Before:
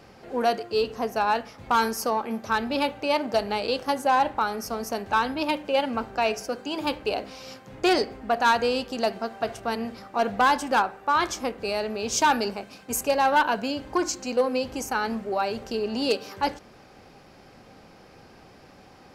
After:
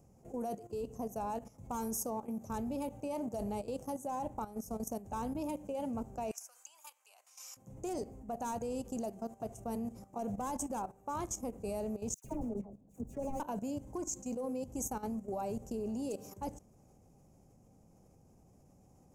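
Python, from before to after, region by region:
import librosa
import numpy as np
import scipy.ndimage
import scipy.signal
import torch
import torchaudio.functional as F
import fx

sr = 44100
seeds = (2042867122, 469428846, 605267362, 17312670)

y = fx.chain(x, sr, fx.highpass(hz=1200.0, slope=24),
    fx.band_squash(depth_pct=100), at=(6.31, 7.57))
y = fx.chain(y, sr, fx.median_filter(points=41),
    fx.high_shelf(hz=2000.0, db=-10.0),
    fx.dispersion(late='lows', ms=104.0, hz=1700.0), at=(12.14, 13.4))
y = fx.curve_eq(y, sr, hz=(150.0, 380.0, 650.0, 1000.0, 1600.0, 2400.0, 4400.0, 6600.0, 9800.0), db=(0, -10, -10, -15, -28, -23, -28, 0, -2))
y = fx.level_steps(y, sr, step_db=13)
y = F.gain(torch.from_numpy(y), 2.0).numpy()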